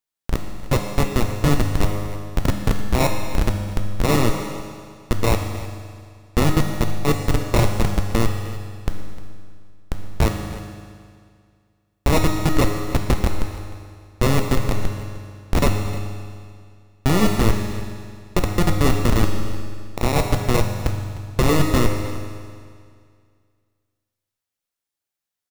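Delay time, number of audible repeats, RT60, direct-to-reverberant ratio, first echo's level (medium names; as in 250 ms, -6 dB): 305 ms, 1, 2.1 s, 3.0 dB, -16.5 dB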